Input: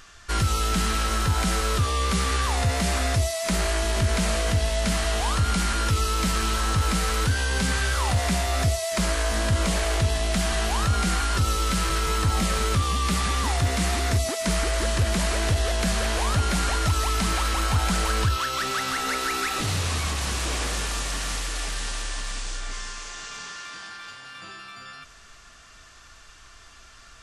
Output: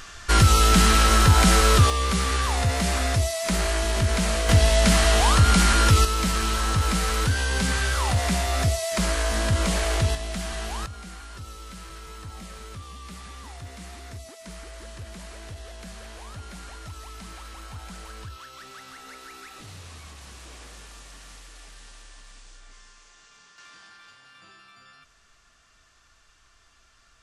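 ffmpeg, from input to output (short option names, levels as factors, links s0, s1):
-af "asetnsamples=n=441:p=0,asendcmd='1.9 volume volume 0dB;4.49 volume volume 6dB;6.05 volume volume 0dB;10.15 volume volume -7dB;10.86 volume volume -17dB;23.58 volume volume -10.5dB',volume=2.24"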